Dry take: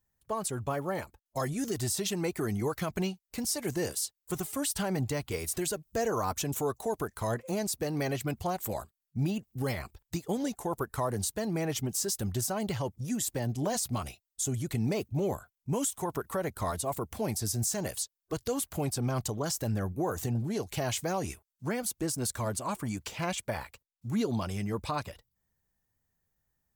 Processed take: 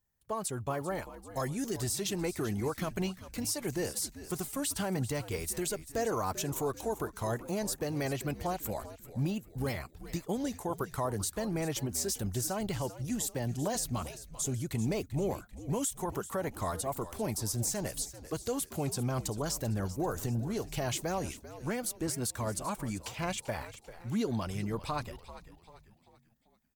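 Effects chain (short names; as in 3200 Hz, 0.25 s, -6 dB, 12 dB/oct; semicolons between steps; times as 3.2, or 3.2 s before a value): frequency-shifting echo 0.391 s, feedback 44%, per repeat -84 Hz, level -14 dB; gain -2 dB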